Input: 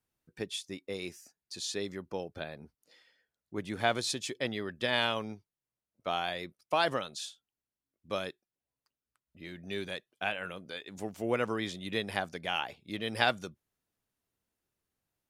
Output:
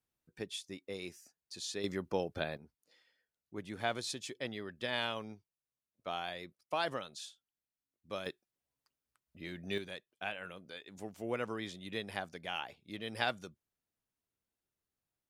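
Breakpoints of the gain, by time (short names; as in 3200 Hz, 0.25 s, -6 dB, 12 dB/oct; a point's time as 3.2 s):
-4.5 dB
from 1.84 s +3 dB
from 2.57 s -6.5 dB
from 8.26 s +0.5 dB
from 9.78 s -6.5 dB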